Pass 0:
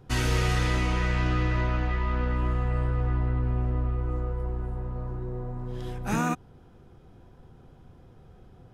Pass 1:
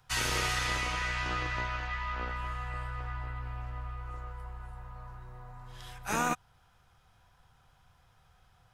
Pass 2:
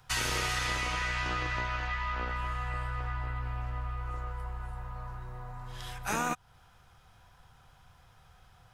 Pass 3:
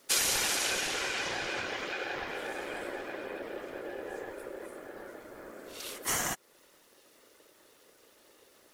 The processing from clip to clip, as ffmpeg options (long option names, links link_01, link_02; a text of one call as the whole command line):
ffmpeg -i in.wav -filter_complex "[0:a]bass=frequency=250:gain=-12,treble=frequency=4000:gain=3,acrossover=split=150|780|1600[link_01][link_02][link_03][link_04];[link_02]acrusher=bits=4:mix=0:aa=0.5[link_05];[link_01][link_05][link_03][link_04]amix=inputs=4:normalize=0" out.wav
ffmpeg -i in.wav -af "acompressor=threshold=-37dB:ratio=2,volume=5dB" out.wav
ffmpeg -i in.wav -af "crystalizer=i=4.5:c=0,afftfilt=real='hypot(re,im)*cos(2*PI*random(0))':imag='hypot(re,im)*sin(2*PI*random(1))':win_size=512:overlap=0.75,aeval=exprs='val(0)*sin(2*PI*460*n/s)':channel_layout=same,volume=3.5dB" out.wav